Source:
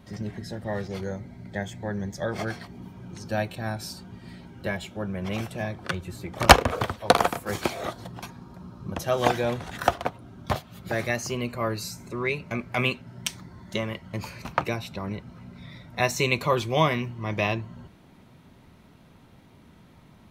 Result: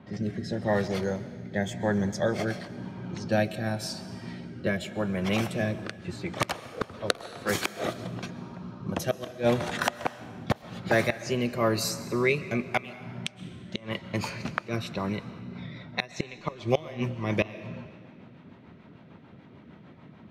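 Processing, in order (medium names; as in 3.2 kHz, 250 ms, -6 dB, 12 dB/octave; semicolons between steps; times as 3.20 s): high-pass 120 Hz 12 dB/octave; inverted gate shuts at -14 dBFS, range -25 dB; level-controlled noise filter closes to 2.3 kHz, open at -29 dBFS; rotary cabinet horn 0.9 Hz, later 6.7 Hz, at 15.10 s; on a send: reverberation RT60 1.8 s, pre-delay 90 ms, DRR 14.5 dB; on the sum: trim +6 dB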